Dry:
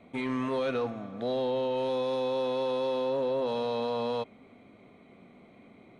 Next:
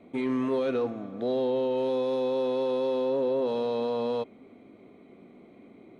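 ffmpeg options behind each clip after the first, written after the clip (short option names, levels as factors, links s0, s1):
-af "equalizer=f=340:t=o:w=1.2:g=10,volume=0.708"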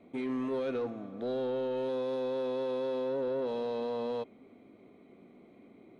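-af "asoftclip=type=tanh:threshold=0.0891,volume=0.596"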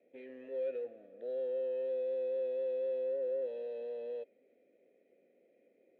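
-filter_complex "[0:a]asplit=3[s0][s1][s2];[s0]bandpass=f=530:t=q:w=8,volume=1[s3];[s1]bandpass=f=1840:t=q:w=8,volume=0.501[s4];[s2]bandpass=f=2480:t=q:w=8,volume=0.355[s5];[s3][s4][s5]amix=inputs=3:normalize=0"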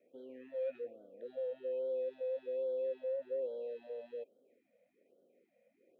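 -af "afftfilt=real='re*(1-between(b*sr/1024,310*pow(2200/310,0.5+0.5*sin(2*PI*1.2*pts/sr))/1.41,310*pow(2200/310,0.5+0.5*sin(2*PI*1.2*pts/sr))*1.41))':imag='im*(1-between(b*sr/1024,310*pow(2200/310,0.5+0.5*sin(2*PI*1.2*pts/sr))/1.41,310*pow(2200/310,0.5+0.5*sin(2*PI*1.2*pts/sr))*1.41))':win_size=1024:overlap=0.75,volume=0.891"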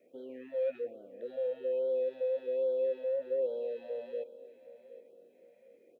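-af "aecho=1:1:768|1536|2304:0.15|0.0598|0.0239,volume=1.88"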